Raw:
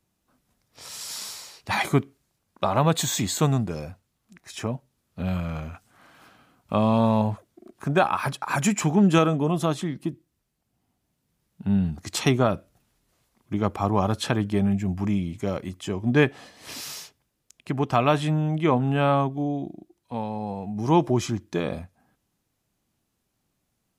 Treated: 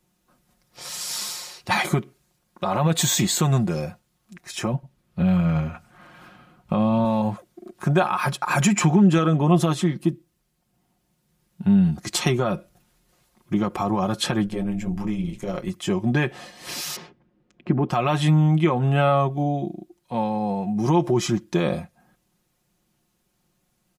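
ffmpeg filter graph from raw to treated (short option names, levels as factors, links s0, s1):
-filter_complex "[0:a]asettb=1/sr,asplit=3[s0][s1][s2];[s0]atrim=end=4.734[s3];[s1]atrim=start=4.73:end=7.05,asetpts=PTS-STARTPTS,afade=t=in:d=0.004:c=qsin,afade=t=out:st=2.316:d=0.004:c=qsin,bass=f=250:g=5,treble=f=4000:g=-7,aecho=1:1:99:0.0841,atrim=end_sample=102312[s4];[s2]atrim=start=7.046[s5];[s3][s4]acrossfade=d=0.004:c1=hsin:c2=qsin[s6];[s6][s5]acrossfade=d=0.004:c1=qsin:c2=hsin,asettb=1/sr,asplit=3[s7][s8][s9];[s7]atrim=end=8.604[s10];[s8]atrim=start=8.6:end=9.61,asetpts=PTS-STARTPTS,afade=t=in:d=0.004:c=qsin,afade=t=out:st=1.006:d=0.004:c=qsin,highshelf=f=8100:g=-9.5,acompressor=mode=upward:threshold=0.1:ratio=2.5:attack=3.2:release=140:knee=2.83:detection=peak[s11];[s9]atrim=start=9.606[s12];[s10][s11]acrossfade=d=0.004:c1=hsin:c2=qsin[s13];[s13][s12]acrossfade=d=0.004:c1=qsin:c2=hsin,asettb=1/sr,asplit=3[s14][s15][s16];[s14]atrim=end=14.464[s17];[s15]atrim=start=14.46:end=15.69,asetpts=PTS-STARTPTS,afade=t=in:d=0.004:c=qsin,afade=t=out:st=1.226:d=0.004:c=qsin,asplit=2[s18][s19];[s19]adelay=22,volume=0.422[s20];[s18][s20]amix=inputs=2:normalize=0,atrim=end_sample=54243,acompressor=threshold=0.0631:ratio=5:attack=3.2:release=140:knee=1:detection=peak,tremolo=f=110:d=0.824[s21];[s16]atrim=start=15.686[s22];[s17][s21]acrossfade=d=0.004:c1=hsin:c2=qsin[s23];[s23][s22]acrossfade=d=0.004:c1=qsin:c2=hsin,asettb=1/sr,asplit=3[s24][s25][s26];[s24]atrim=end=16.964[s27];[s25]atrim=start=16.96:end=17.89,asetpts=PTS-STARTPTS,afade=t=in:d=0.004:c=qsin,afade=t=out:st=0.926:d=0.004:c=qsin,lowpass=2100,equalizer=f=260:t=o:w=1.8:g=12.5[s28];[s26]atrim=start=17.886[s29];[s27][s28]acrossfade=d=0.004:c1=hsin:c2=qsin[s30];[s30][s29]acrossfade=d=0.004:c1=qsin:c2=hsin,alimiter=limit=0.158:level=0:latency=1:release=109,aecho=1:1:5.6:0.65,volume=1.58"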